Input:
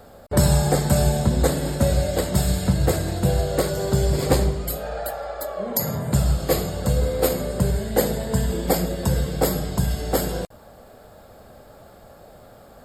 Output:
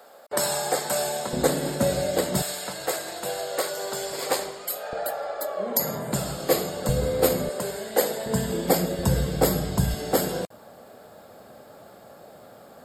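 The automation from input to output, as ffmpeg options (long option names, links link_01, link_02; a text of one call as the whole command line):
ffmpeg -i in.wav -af "asetnsamples=nb_out_samples=441:pad=0,asendcmd='1.33 highpass f 200;2.42 highpass f 650;4.93 highpass f 240;6.89 highpass f 100;7.49 highpass f 420;8.26 highpass f 150;8.99 highpass f 65;9.94 highpass f 160',highpass=560" out.wav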